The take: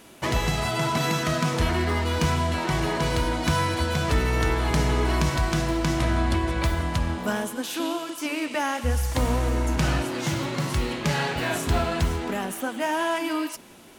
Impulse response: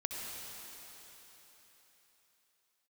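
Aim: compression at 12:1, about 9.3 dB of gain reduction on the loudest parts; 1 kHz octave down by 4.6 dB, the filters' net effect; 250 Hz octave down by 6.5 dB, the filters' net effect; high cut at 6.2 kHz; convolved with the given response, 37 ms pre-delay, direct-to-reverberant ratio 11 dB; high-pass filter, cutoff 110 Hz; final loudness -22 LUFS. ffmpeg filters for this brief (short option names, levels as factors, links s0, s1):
-filter_complex "[0:a]highpass=110,lowpass=6200,equalizer=f=250:t=o:g=-9,equalizer=f=1000:t=o:g=-5,acompressor=threshold=0.0224:ratio=12,asplit=2[s0][s1];[1:a]atrim=start_sample=2205,adelay=37[s2];[s1][s2]afir=irnorm=-1:irlink=0,volume=0.211[s3];[s0][s3]amix=inputs=2:normalize=0,volume=5.31"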